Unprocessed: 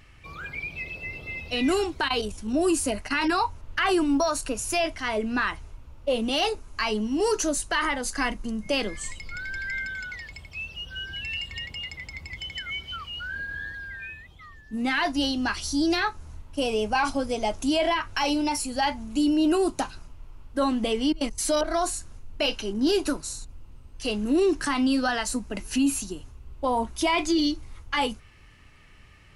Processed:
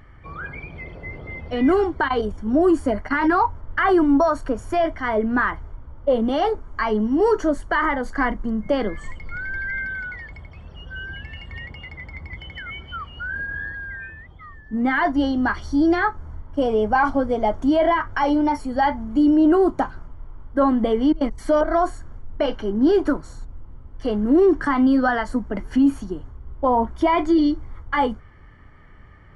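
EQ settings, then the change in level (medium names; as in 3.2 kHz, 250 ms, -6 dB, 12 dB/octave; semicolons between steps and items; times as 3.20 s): Savitzky-Golay filter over 41 samples; +6.5 dB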